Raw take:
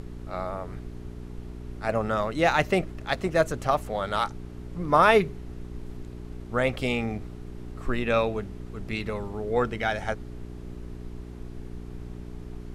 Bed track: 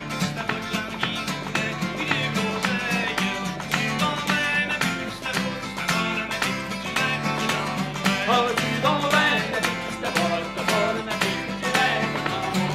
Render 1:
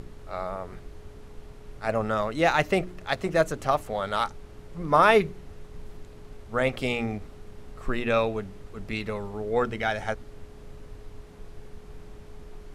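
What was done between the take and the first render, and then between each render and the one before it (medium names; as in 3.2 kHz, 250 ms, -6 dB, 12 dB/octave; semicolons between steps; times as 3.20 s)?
de-hum 60 Hz, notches 6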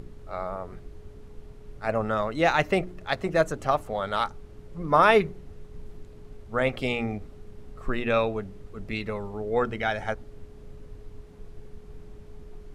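noise reduction 6 dB, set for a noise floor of -46 dBFS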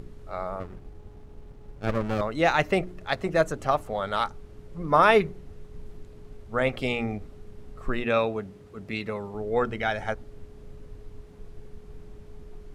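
0.60–2.21 s: sliding maximum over 33 samples; 8.04–9.35 s: high-pass 97 Hz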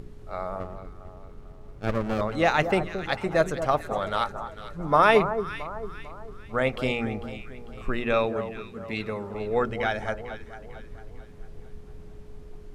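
echo whose repeats swap between lows and highs 224 ms, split 1.3 kHz, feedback 63%, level -9 dB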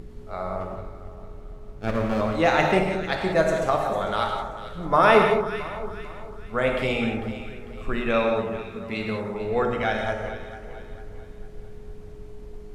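gated-style reverb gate 210 ms flat, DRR 1.5 dB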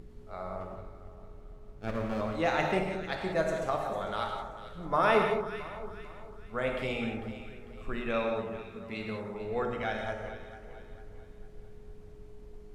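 trim -8.5 dB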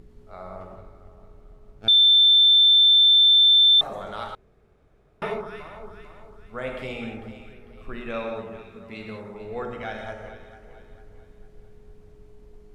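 1.88–3.81 s: bleep 3.55 kHz -12 dBFS; 4.35–5.22 s: room tone; 7.53–8.01 s: peaking EQ 7.3 kHz -8.5 dB 0.27 oct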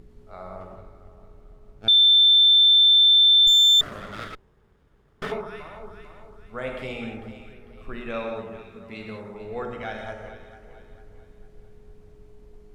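3.47–5.32 s: comb filter that takes the minimum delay 0.58 ms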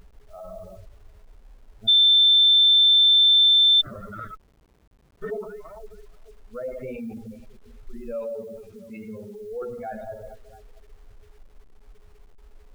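spectral contrast enhancement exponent 2.7; word length cut 10-bit, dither none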